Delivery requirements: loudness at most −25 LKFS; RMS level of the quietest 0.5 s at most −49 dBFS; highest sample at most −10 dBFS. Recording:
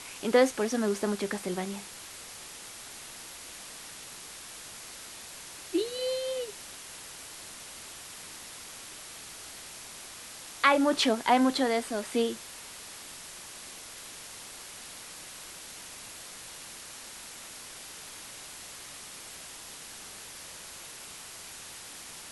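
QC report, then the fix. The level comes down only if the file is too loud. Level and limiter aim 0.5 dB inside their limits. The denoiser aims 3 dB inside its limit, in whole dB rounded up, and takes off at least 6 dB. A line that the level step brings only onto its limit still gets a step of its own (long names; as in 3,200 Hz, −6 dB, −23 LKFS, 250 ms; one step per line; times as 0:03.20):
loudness −34.0 LKFS: in spec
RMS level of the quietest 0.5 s −45 dBFS: out of spec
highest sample −8.0 dBFS: out of spec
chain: broadband denoise 7 dB, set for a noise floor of −45 dBFS
brickwall limiter −10.5 dBFS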